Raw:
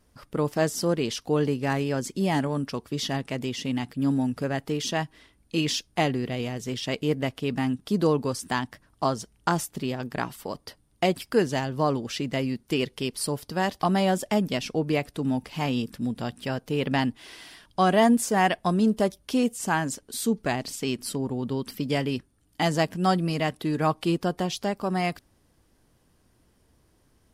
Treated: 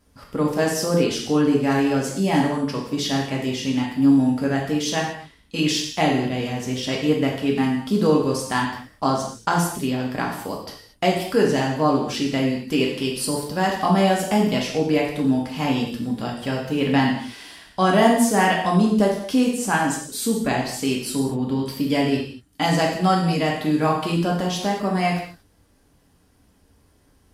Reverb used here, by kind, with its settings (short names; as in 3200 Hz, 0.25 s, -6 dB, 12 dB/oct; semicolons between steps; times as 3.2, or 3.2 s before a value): non-linear reverb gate 0.26 s falling, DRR -2 dB; gain +1 dB